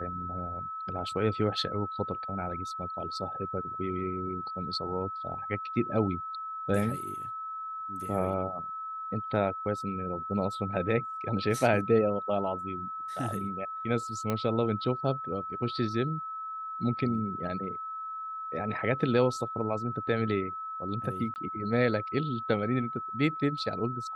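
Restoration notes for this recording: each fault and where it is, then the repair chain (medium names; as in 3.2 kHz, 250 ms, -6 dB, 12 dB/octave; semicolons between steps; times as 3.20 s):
whine 1.3 kHz -35 dBFS
14.30 s: pop -16 dBFS
21.34–21.36 s: dropout 19 ms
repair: de-click; band-stop 1.3 kHz, Q 30; interpolate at 21.34 s, 19 ms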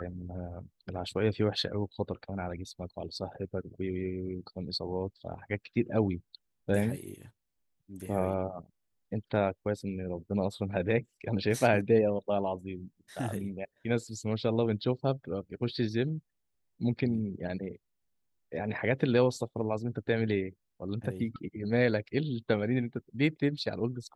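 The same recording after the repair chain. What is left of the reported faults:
nothing left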